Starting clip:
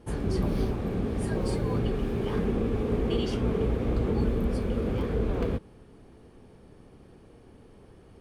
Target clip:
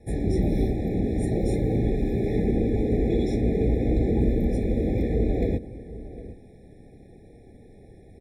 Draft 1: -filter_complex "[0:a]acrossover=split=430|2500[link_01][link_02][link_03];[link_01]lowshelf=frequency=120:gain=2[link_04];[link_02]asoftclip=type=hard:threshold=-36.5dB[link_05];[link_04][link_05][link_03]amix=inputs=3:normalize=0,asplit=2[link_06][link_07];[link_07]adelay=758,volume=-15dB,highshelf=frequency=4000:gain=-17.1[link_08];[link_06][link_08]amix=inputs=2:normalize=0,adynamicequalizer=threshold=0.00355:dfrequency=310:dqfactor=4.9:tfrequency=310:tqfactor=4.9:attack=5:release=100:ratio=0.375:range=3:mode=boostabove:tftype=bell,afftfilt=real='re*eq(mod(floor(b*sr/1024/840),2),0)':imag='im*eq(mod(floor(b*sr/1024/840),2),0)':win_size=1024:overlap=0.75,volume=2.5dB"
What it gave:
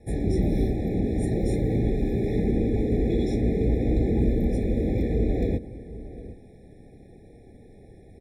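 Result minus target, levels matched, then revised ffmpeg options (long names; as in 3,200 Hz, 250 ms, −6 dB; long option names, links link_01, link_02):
hard clipping: distortion +16 dB
-filter_complex "[0:a]acrossover=split=430|2500[link_01][link_02][link_03];[link_01]lowshelf=frequency=120:gain=2[link_04];[link_02]asoftclip=type=hard:threshold=-29dB[link_05];[link_04][link_05][link_03]amix=inputs=3:normalize=0,asplit=2[link_06][link_07];[link_07]adelay=758,volume=-15dB,highshelf=frequency=4000:gain=-17.1[link_08];[link_06][link_08]amix=inputs=2:normalize=0,adynamicequalizer=threshold=0.00355:dfrequency=310:dqfactor=4.9:tfrequency=310:tqfactor=4.9:attack=5:release=100:ratio=0.375:range=3:mode=boostabove:tftype=bell,afftfilt=real='re*eq(mod(floor(b*sr/1024/840),2),0)':imag='im*eq(mod(floor(b*sr/1024/840),2),0)':win_size=1024:overlap=0.75,volume=2.5dB"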